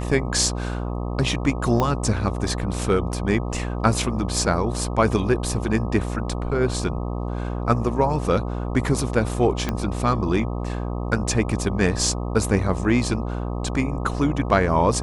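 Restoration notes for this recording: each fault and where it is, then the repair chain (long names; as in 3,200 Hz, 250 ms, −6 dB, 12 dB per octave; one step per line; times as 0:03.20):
mains buzz 60 Hz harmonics 21 −27 dBFS
0:01.80: click −9 dBFS
0:09.69: click −10 dBFS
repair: click removal
hum removal 60 Hz, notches 21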